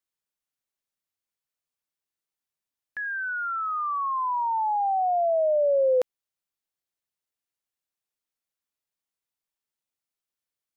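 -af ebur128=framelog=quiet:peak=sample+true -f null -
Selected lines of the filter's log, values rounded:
Integrated loudness:
  I:         -25.2 LUFS
  Threshold: -35.4 LUFS
Loudness range:
  LRA:        11.4 LU
  Threshold: -47.8 LUFS
  LRA low:   -36.2 LUFS
  LRA high:  -24.9 LUFS
Sample peak:
  Peak:      -17.1 dBFS
True peak:
  Peak:      -16.0 dBFS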